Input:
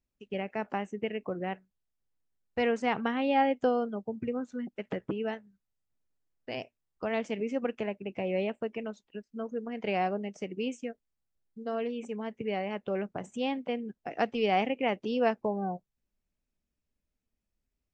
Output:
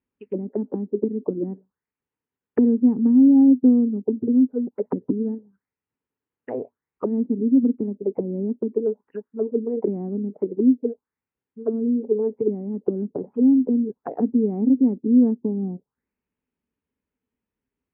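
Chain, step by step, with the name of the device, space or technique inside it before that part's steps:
envelope filter bass rig (envelope-controlled low-pass 260–3,200 Hz down, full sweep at −30.5 dBFS; loudspeaker in its box 86–2,000 Hz, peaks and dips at 260 Hz +6 dB, 440 Hz +8 dB, 650 Hz −7 dB, 930 Hz +6 dB)
level +2 dB

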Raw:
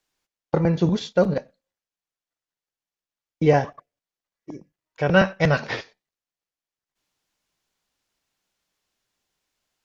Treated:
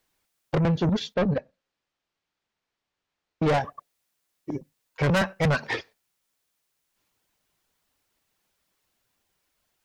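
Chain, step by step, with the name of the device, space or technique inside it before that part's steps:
reverb reduction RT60 1 s
high-shelf EQ 4,800 Hz −11.5 dB
0:04.51–0:05.10: comb filter 7.5 ms, depth 88%
open-reel tape (soft clipping −24.5 dBFS, distortion −5 dB; parametric band 81 Hz +4.5 dB; white noise bed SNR 47 dB)
0:01.14–0:03.43: high-frequency loss of the air 150 metres
level +5 dB

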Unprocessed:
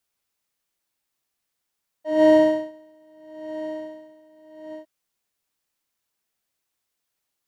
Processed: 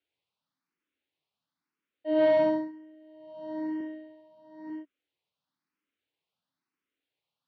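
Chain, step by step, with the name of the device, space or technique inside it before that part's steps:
barber-pole phaser into a guitar amplifier (frequency shifter mixed with the dry sound +1 Hz; soft clipping −16 dBFS, distortion −14 dB; loudspeaker in its box 98–4,000 Hz, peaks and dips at 160 Hz +4 dB, 280 Hz +8 dB, 690 Hz −4 dB, 1,800 Hz −3 dB)
0:03.79–0:04.70: double-tracking delay 15 ms −4 dB

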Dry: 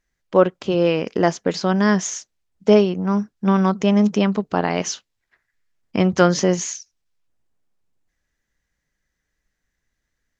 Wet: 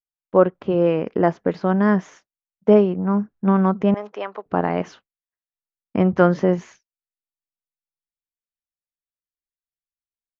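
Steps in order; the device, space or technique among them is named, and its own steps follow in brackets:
hearing-loss simulation (low-pass filter 1,600 Hz 12 dB per octave; downward expander −40 dBFS)
0:03.94–0:04.46: Bessel high-pass filter 680 Hz, order 4

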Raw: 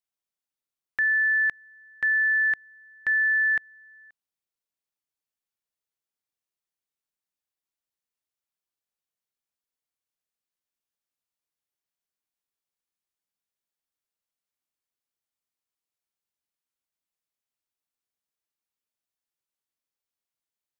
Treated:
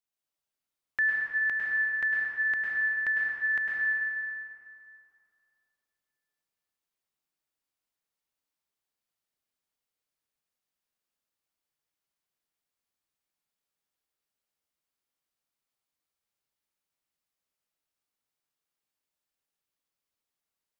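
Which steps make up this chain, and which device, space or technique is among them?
stairwell (convolution reverb RT60 2.6 s, pre-delay 98 ms, DRR −4.5 dB)
level −2.5 dB

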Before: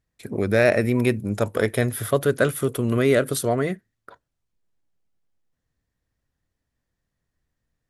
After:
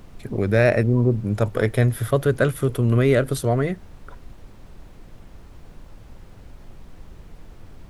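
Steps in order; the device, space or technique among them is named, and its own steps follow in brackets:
0:00.83–0:01.24: elliptic low-pass filter 1,200 Hz
car interior (parametric band 120 Hz +7.5 dB 0.62 octaves; high-shelf EQ 4,900 Hz −6.5 dB; brown noise bed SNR 17 dB)

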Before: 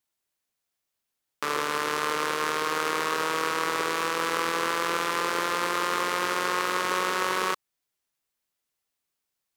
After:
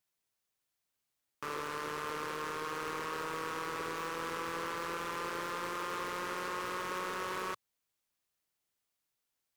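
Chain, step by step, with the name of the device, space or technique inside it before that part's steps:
open-reel tape (soft clipping −22.5 dBFS, distortion −9 dB; parametric band 110 Hz +5 dB 1.03 octaves; white noise bed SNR 47 dB)
level −7.5 dB

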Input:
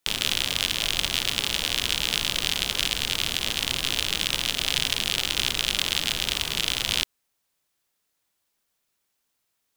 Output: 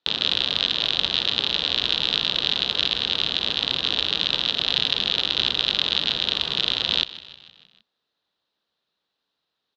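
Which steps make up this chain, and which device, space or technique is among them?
frequency-shifting delay pedal into a guitar cabinet (echo with shifted repeats 155 ms, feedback 57%, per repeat −48 Hz, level −17 dB; loudspeaker in its box 80–4,100 Hz, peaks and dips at 100 Hz −9 dB, 470 Hz +3 dB, 2,200 Hz −8 dB, 3,900 Hz +9 dB)
level +1.5 dB

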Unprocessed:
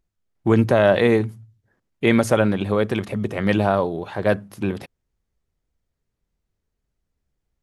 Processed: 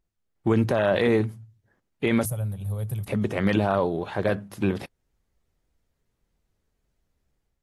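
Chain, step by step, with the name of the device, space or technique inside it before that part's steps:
0:02.25–0:03.08: drawn EQ curve 140 Hz 0 dB, 270 Hz −30 dB, 570 Hz −19 dB, 1,800 Hz −29 dB, 5,700 Hz −15 dB, 12,000 Hz +11 dB
low-bitrate web radio (automatic gain control gain up to 6 dB; brickwall limiter −8 dBFS, peak gain reduction 6.5 dB; level −3 dB; AAC 48 kbit/s 48,000 Hz)

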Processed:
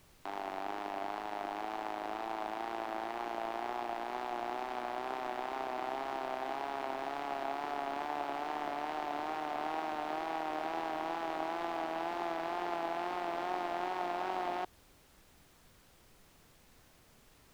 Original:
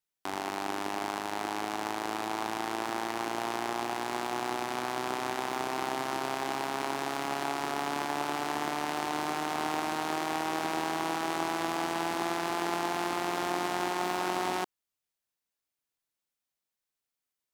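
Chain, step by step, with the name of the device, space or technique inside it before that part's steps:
horn gramophone (band-pass filter 220–3,500 Hz; parametric band 680 Hz +6.5 dB 0.59 octaves; tape wow and flutter; pink noise bed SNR 24 dB)
level −7.5 dB

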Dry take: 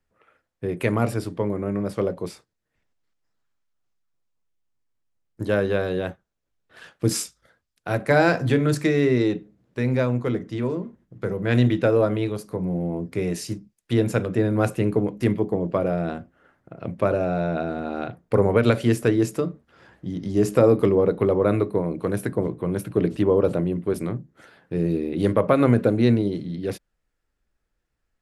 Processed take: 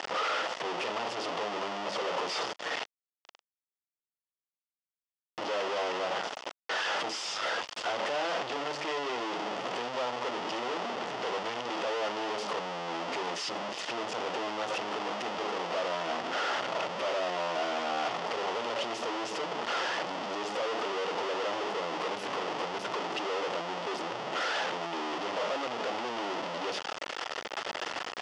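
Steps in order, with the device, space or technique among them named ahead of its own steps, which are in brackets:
home computer beeper (sign of each sample alone; loudspeaker in its box 720–4,500 Hz, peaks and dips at 1,100 Hz −3 dB, 1,600 Hz −9 dB, 2,300 Hz −8 dB, 4,000 Hz −10 dB)

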